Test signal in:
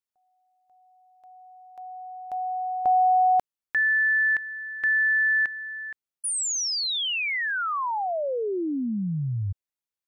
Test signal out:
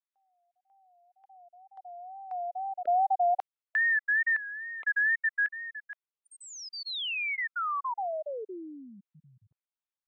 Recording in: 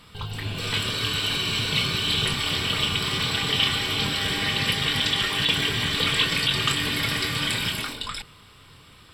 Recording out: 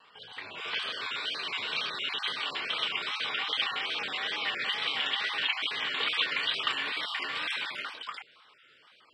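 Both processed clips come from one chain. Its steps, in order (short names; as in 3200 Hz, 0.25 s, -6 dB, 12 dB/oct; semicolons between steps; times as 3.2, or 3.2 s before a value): random spectral dropouts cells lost 23%; BPF 620–3100 Hz; wow and flutter 100 cents; gain -3 dB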